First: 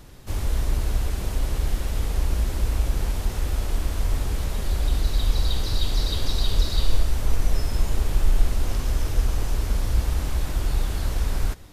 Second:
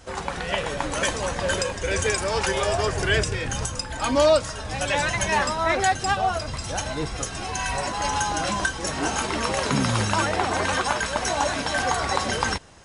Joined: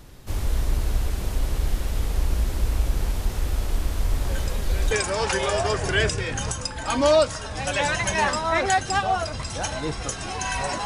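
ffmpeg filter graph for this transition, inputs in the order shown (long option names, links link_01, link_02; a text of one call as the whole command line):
ffmpeg -i cue0.wav -i cue1.wav -filter_complex "[1:a]asplit=2[link_01][link_02];[0:a]apad=whole_dur=10.85,atrim=end=10.85,atrim=end=4.912[link_03];[link_02]atrim=start=2.048:end=7.99[link_04];[link_01]atrim=start=1.36:end=2.05,asetpts=PTS-STARTPTS,volume=-13dB,afade=type=in:duration=0.004:curve=hsin,afade=type=out:start_time=0.686:duration=0.004:curve=hsin,adelay=4220[link_05];[link_03][link_04]acrossfade=duration=0.004:curve1=hsin:curve2=hsin[link_06];[link_06][link_05]amix=inputs=2:normalize=0" out.wav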